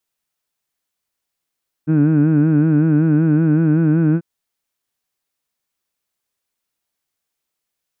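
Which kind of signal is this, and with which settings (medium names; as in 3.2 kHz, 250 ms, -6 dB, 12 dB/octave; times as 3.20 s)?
formant vowel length 2.34 s, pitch 151 Hz, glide +1 st, F1 270 Hz, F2 1.5 kHz, F3 2.5 kHz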